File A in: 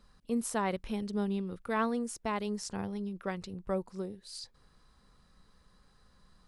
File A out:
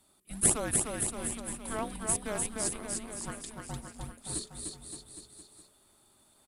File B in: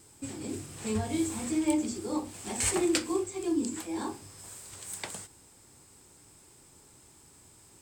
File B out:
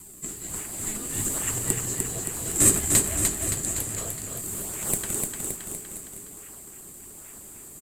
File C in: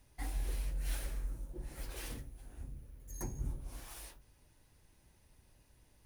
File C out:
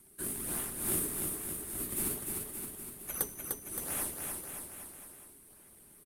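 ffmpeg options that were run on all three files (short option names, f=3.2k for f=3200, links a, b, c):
-filter_complex "[0:a]highpass=f=1.2k:p=1,aexciter=amount=7.8:drive=5.5:freq=8.3k,asplit=2[a][b];[b]acrusher=samples=39:mix=1:aa=0.000001:lfo=1:lforange=62.4:lforate=1.2,volume=-7.5dB[c];[a][c]amix=inputs=2:normalize=0,afreqshift=-430,aresample=32000,aresample=44100,asplit=2[d][e];[e]aecho=0:1:300|570|813|1032|1229:0.631|0.398|0.251|0.158|0.1[f];[d][f]amix=inputs=2:normalize=0"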